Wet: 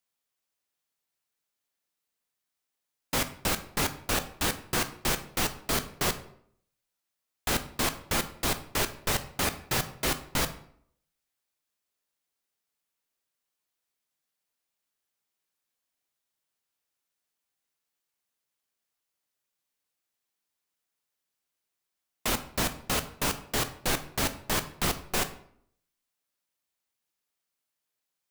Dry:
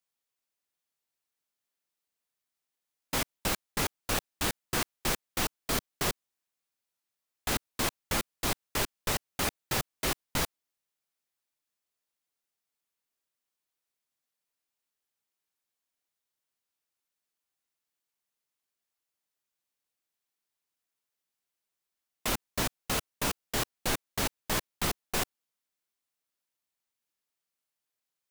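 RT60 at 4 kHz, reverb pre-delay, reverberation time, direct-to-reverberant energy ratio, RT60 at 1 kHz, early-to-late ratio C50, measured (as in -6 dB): 0.45 s, 12 ms, 0.65 s, 9.5 dB, 0.60 s, 13.5 dB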